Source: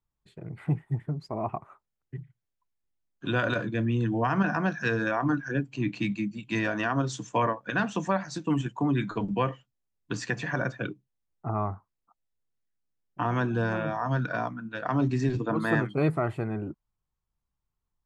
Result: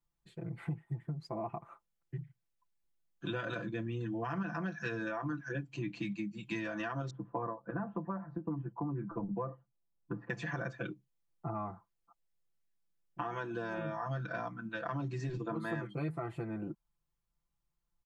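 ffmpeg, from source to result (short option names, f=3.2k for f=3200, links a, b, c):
-filter_complex "[0:a]asettb=1/sr,asplit=3[a][b][c];[a]atrim=end=7.104[d];[b]atrim=start=7.1:end=10.3,asetpts=PTS-STARTPTS,afade=t=in:d=0.004:c=qsin,afade=t=out:st=3.196:d=0.004:c=qsin,lowpass=f=1.2k:w=0.5412,lowpass=f=1.2k:w=1.3066[e];[c]atrim=start=10.296[f];[d][e]acrossfade=d=0.004:c1=hsin:c2=qsin[g];[g][f]acrossfade=d=0.004:c1=qsin:c2=hsin,asettb=1/sr,asplit=3[h][i][j];[h]atrim=end=13.214[k];[i]atrim=start=13.21:end=13.78,asetpts=PTS-STARTPTS,afade=t=in:d=0.004:c=qsin,afade=t=out:st=0.566:d=0.004:c=qsin,equalizer=f=76:t=o:w=2:g=-14[l];[j]atrim=start=13.776[m];[k][l]acrossfade=d=0.004:c1=hsin:c2=qsin[n];[n][m]acrossfade=d=0.004:c1=qsin:c2=hsin,aecho=1:1:5.9:0.96,acompressor=threshold=-32dB:ratio=4,volume=-4dB"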